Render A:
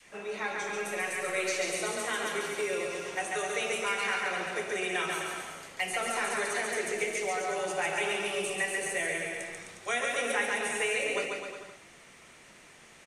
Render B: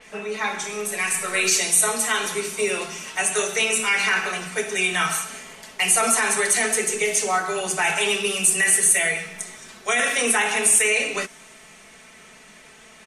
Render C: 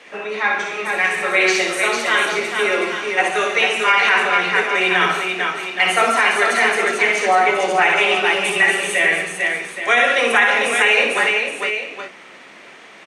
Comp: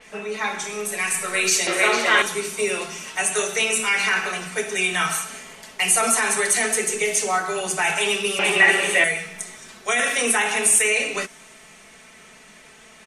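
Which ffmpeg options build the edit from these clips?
-filter_complex "[2:a]asplit=2[s0][s1];[1:a]asplit=3[s2][s3][s4];[s2]atrim=end=1.672[s5];[s0]atrim=start=1.668:end=2.222[s6];[s3]atrim=start=2.218:end=8.392[s7];[s1]atrim=start=8.388:end=9.042[s8];[s4]atrim=start=9.038[s9];[s5][s6]acrossfade=d=0.004:c1=hsin:c2=hsin[s10];[s10][s7]acrossfade=d=0.004:c1=hsin:c2=hsin[s11];[s11][s8]acrossfade=d=0.004:c1=hsin:c2=hsin[s12];[s12][s9]acrossfade=d=0.004:c1=hsin:c2=hsin"

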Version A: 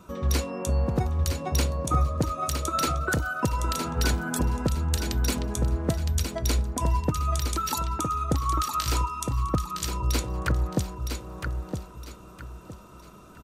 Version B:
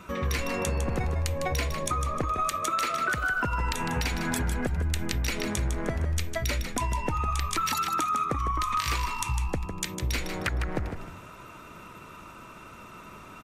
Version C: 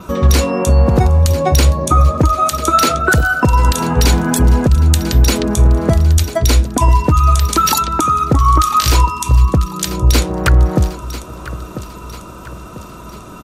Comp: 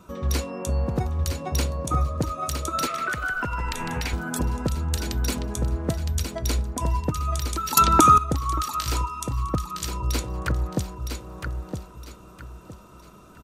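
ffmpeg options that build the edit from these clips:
-filter_complex "[0:a]asplit=3[s0][s1][s2];[s0]atrim=end=2.872[s3];[1:a]atrim=start=2.868:end=4.132[s4];[s1]atrim=start=4.128:end=7.772[s5];[2:a]atrim=start=7.768:end=8.182[s6];[s2]atrim=start=8.178[s7];[s3][s4]acrossfade=d=0.004:c1=hsin:c2=hsin[s8];[s8][s5]acrossfade=d=0.004:c1=hsin:c2=hsin[s9];[s9][s6]acrossfade=d=0.004:c1=hsin:c2=hsin[s10];[s10][s7]acrossfade=d=0.004:c1=hsin:c2=hsin"

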